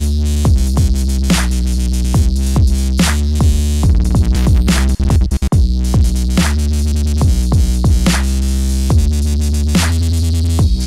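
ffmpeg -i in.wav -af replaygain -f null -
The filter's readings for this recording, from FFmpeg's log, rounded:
track_gain = -1.1 dB
track_peak = 0.429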